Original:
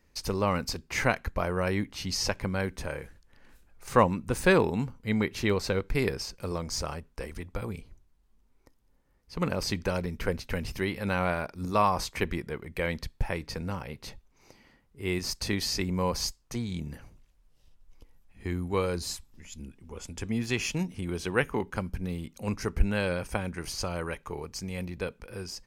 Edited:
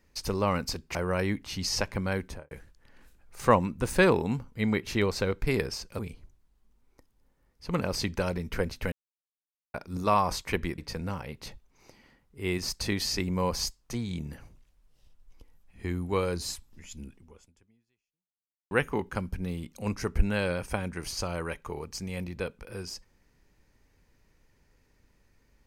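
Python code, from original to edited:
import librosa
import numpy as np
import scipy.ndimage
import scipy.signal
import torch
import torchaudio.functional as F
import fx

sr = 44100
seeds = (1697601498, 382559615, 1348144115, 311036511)

y = fx.studio_fade_out(x, sr, start_s=2.72, length_s=0.27)
y = fx.edit(y, sr, fx.cut(start_s=0.95, length_s=0.48),
    fx.cut(start_s=6.47, length_s=1.2),
    fx.silence(start_s=10.6, length_s=0.82),
    fx.cut(start_s=12.46, length_s=0.93),
    fx.fade_out_span(start_s=19.76, length_s=1.56, curve='exp'), tone=tone)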